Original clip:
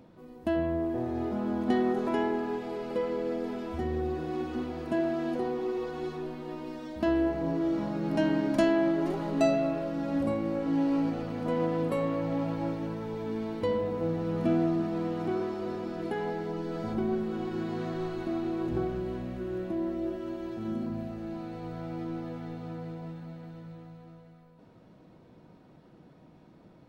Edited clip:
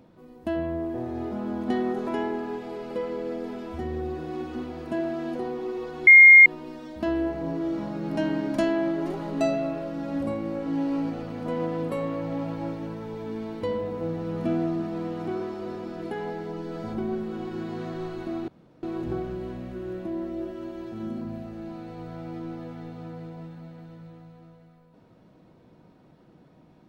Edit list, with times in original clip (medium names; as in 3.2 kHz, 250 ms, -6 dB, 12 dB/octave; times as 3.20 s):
6.07–6.46 s: bleep 2.13 kHz -7 dBFS
18.48 s: insert room tone 0.35 s